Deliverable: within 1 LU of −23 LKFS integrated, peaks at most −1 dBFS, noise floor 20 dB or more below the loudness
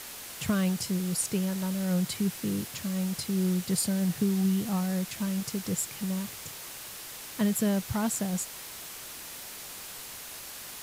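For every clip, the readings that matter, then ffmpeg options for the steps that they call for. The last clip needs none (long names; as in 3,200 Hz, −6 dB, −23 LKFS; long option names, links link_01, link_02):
background noise floor −43 dBFS; target noise floor −51 dBFS; integrated loudness −30.5 LKFS; sample peak −15.0 dBFS; target loudness −23.0 LKFS
→ -af "afftdn=noise_reduction=8:noise_floor=-43"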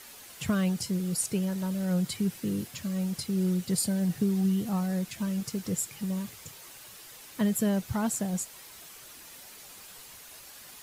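background noise floor −49 dBFS; target noise floor −50 dBFS
→ -af "afftdn=noise_reduction=6:noise_floor=-49"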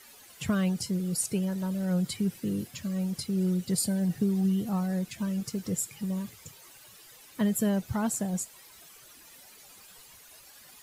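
background noise floor −53 dBFS; integrated loudness −30.0 LKFS; sample peak −15.0 dBFS; target loudness −23.0 LKFS
→ -af "volume=7dB"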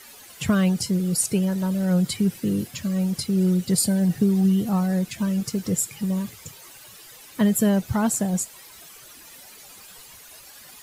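integrated loudness −23.0 LKFS; sample peak −8.0 dBFS; background noise floor −46 dBFS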